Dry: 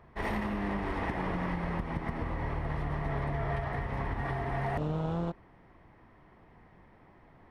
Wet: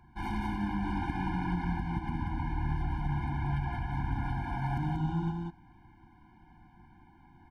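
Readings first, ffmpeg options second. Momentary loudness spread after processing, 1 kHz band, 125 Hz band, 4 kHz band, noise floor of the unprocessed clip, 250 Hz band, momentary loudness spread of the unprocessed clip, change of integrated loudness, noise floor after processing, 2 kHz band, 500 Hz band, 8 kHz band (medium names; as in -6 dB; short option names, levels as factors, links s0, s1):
3 LU, -0.5 dB, +2.0 dB, -0.5 dB, -59 dBFS, +1.5 dB, 3 LU, 0.0 dB, -59 dBFS, -3.5 dB, -11.5 dB, no reading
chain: -af "aecho=1:1:185:0.708,afftfilt=real='re*eq(mod(floor(b*sr/1024/350),2),0)':imag='im*eq(mod(floor(b*sr/1024/350),2),0)':win_size=1024:overlap=0.75"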